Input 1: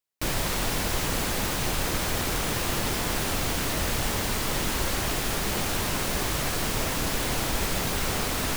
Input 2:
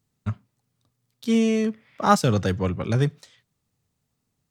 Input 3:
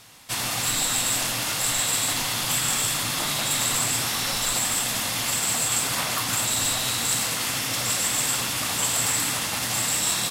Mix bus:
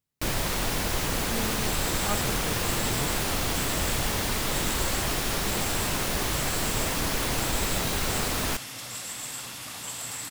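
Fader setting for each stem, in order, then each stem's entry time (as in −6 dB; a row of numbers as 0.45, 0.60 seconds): −0.5, −15.0, −12.0 decibels; 0.00, 0.00, 1.05 seconds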